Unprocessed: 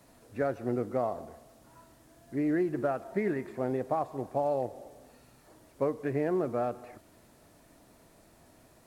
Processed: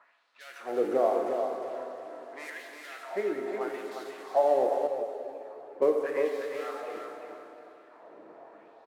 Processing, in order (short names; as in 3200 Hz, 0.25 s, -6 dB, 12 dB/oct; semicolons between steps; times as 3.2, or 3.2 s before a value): G.711 law mismatch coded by mu; 1.26–2.5 RIAA curve recording; low-pass opened by the level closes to 1100 Hz, open at -27 dBFS; 3.2–3.61 compressor, threshold -34 dBFS, peak gain reduction 9 dB; LFO high-pass sine 0.82 Hz 360–4000 Hz; feedback echo 0.356 s, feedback 27%, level -6 dB; plate-style reverb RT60 3.1 s, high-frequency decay 0.65×, DRR 3 dB; 4.87–5.82 ensemble effect; gain -1 dB